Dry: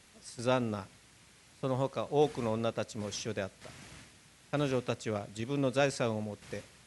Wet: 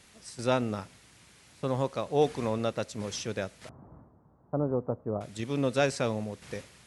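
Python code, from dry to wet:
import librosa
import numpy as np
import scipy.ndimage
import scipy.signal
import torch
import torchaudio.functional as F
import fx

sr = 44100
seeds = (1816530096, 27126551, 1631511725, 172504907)

y = fx.steep_lowpass(x, sr, hz=1100.0, slope=36, at=(3.69, 5.21))
y = F.gain(torch.from_numpy(y), 2.5).numpy()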